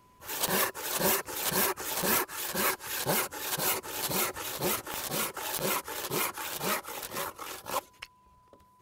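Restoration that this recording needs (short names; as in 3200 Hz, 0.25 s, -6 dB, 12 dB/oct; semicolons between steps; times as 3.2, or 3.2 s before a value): clip repair -17.5 dBFS; de-click; notch 1000 Hz, Q 30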